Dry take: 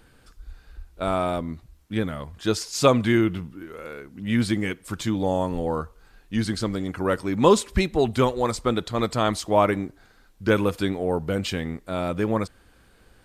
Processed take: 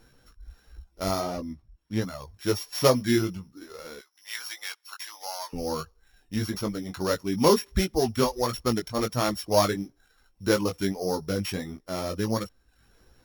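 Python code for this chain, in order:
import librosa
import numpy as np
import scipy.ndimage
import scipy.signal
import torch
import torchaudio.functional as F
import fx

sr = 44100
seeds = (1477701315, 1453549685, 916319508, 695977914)

y = np.r_[np.sort(x[:len(x) // 8 * 8].reshape(-1, 8), axis=1).ravel(), x[len(x) // 8 * 8:]]
y = fx.dereverb_blind(y, sr, rt60_s=0.61)
y = fx.high_shelf(y, sr, hz=fx.line((1.19, 4400.0), (2.01, 8200.0)), db=-9.0, at=(1.19, 2.01), fade=0.02)
y = fx.cheby2_highpass(y, sr, hz=190.0, order=4, stop_db=70, at=(3.99, 5.53))
y = fx.chorus_voices(y, sr, voices=2, hz=1.4, base_ms=18, depth_ms=3.0, mix_pct=35)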